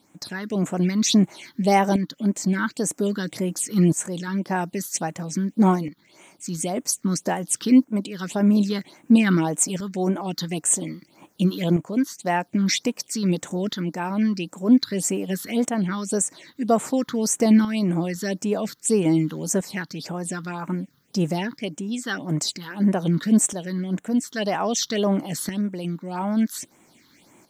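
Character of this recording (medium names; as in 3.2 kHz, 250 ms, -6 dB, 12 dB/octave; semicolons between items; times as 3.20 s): a quantiser's noise floor 12-bit, dither triangular; phasing stages 6, 1.8 Hz, lowest notch 640–4500 Hz; tremolo saw up 0.51 Hz, depth 60%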